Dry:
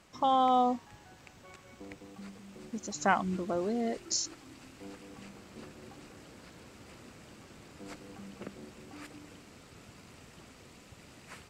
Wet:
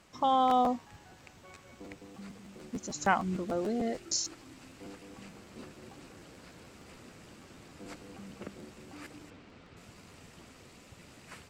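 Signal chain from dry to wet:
0:03.44–0:04.09: notch filter 1,000 Hz, Q 6.1
0:09.30–0:09.77: low-pass filter 3,700 Hz 12 dB per octave
regular buffer underruns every 0.15 s, samples 512, repeat, from 0:00.49

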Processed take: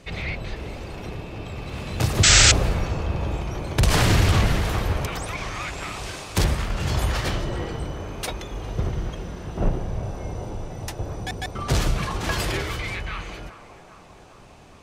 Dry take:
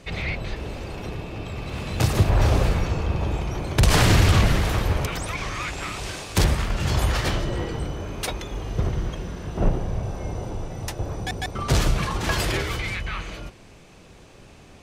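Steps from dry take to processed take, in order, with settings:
feedback echo with a band-pass in the loop 404 ms, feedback 75%, band-pass 790 Hz, level −12 dB
sound drawn into the spectrogram noise, 0:02.23–0:02.52, 1,200–8,200 Hz −13 dBFS
level −1.5 dB

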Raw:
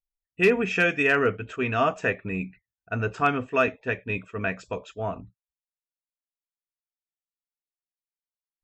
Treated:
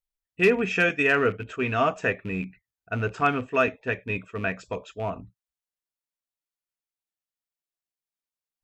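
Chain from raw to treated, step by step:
loose part that buzzes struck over −32 dBFS, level −35 dBFS
0:00.89–0:01.40: downward expander −28 dBFS

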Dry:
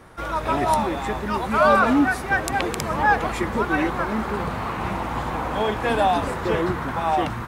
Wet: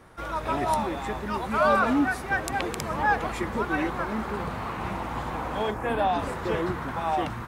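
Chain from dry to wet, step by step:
0:05.70–0:06.18: parametric band 2,600 Hz → 13,000 Hz −14 dB 1 octave
level −5 dB

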